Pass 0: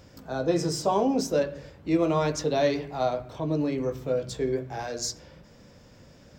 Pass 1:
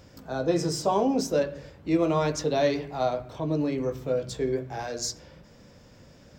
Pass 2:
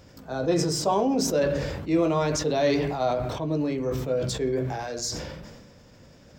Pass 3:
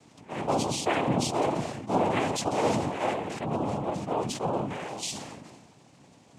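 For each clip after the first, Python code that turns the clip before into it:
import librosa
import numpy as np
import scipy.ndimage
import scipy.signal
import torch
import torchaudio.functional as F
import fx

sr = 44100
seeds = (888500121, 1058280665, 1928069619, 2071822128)

y1 = x
y2 = fx.sustainer(y1, sr, db_per_s=34.0)
y3 = fx.noise_vocoder(y2, sr, seeds[0], bands=4)
y3 = y3 * librosa.db_to_amplitude(-3.0)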